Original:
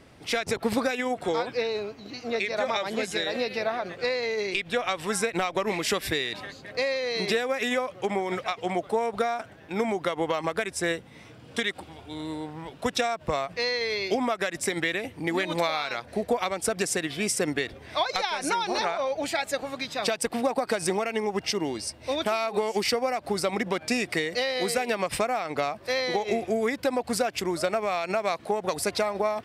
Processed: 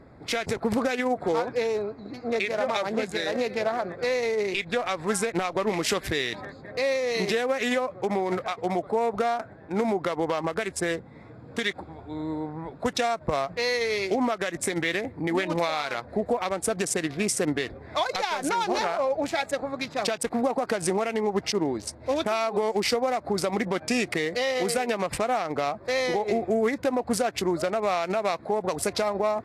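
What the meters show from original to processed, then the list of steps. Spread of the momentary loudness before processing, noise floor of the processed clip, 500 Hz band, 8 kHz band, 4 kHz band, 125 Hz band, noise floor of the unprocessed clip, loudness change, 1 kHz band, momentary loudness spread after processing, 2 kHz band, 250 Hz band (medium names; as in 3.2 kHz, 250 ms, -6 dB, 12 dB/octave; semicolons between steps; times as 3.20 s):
5 LU, -47 dBFS, +1.5 dB, 0.0 dB, -1.5 dB, +2.5 dB, -49 dBFS, +1.0 dB, +1.0 dB, 5 LU, -0.5 dB, +2.5 dB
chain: local Wiener filter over 15 samples; peak limiter -19 dBFS, peak gain reduction 6 dB; trim +3.5 dB; Vorbis 48 kbps 32 kHz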